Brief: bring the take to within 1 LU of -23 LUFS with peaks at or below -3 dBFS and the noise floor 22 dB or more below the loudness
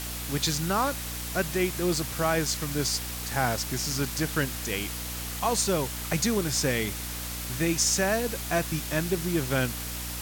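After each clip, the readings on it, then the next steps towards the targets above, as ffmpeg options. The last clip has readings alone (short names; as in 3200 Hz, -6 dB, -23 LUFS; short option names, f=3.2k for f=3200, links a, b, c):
hum 60 Hz; harmonics up to 300 Hz; hum level -36 dBFS; noise floor -35 dBFS; noise floor target -50 dBFS; loudness -27.5 LUFS; peak -11.0 dBFS; loudness target -23.0 LUFS
-> -af "bandreject=f=60:t=h:w=6,bandreject=f=120:t=h:w=6,bandreject=f=180:t=h:w=6,bandreject=f=240:t=h:w=6,bandreject=f=300:t=h:w=6"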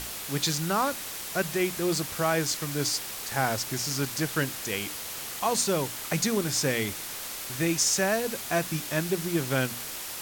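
hum none; noise floor -37 dBFS; noise floor target -50 dBFS
-> -af "afftdn=nr=13:nf=-37"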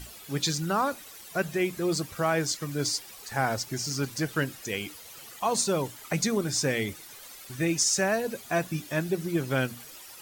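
noise floor -47 dBFS; noise floor target -51 dBFS
-> -af "afftdn=nr=6:nf=-47"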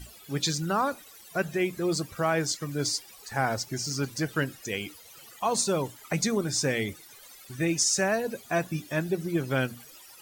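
noise floor -51 dBFS; loudness -28.5 LUFS; peak -12.5 dBFS; loudness target -23.0 LUFS
-> -af "volume=5.5dB"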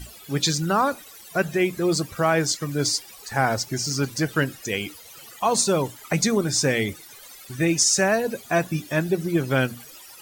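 loudness -23.0 LUFS; peak -7.0 dBFS; noise floor -45 dBFS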